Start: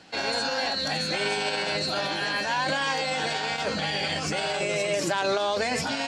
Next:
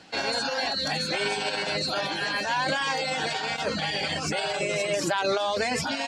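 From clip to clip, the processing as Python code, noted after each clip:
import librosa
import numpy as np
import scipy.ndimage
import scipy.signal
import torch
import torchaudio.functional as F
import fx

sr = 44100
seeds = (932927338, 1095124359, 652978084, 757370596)

y = fx.dereverb_blind(x, sr, rt60_s=0.6)
y = y * librosa.db_to_amplitude(1.0)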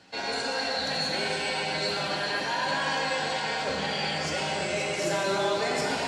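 y = fx.rev_plate(x, sr, seeds[0], rt60_s=3.7, hf_ratio=0.7, predelay_ms=0, drr_db=-3.5)
y = y * librosa.db_to_amplitude(-6.0)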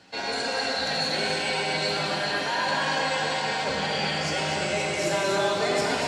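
y = x + 10.0 ** (-6.0 / 20.0) * np.pad(x, (int(240 * sr / 1000.0), 0))[:len(x)]
y = y * librosa.db_to_amplitude(1.5)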